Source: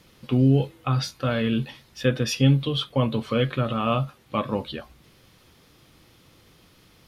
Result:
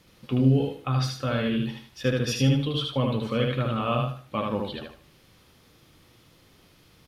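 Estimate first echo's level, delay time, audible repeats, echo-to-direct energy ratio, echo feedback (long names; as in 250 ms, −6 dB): −3.0 dB, 76 ms, 3, −2.5 dB, 29%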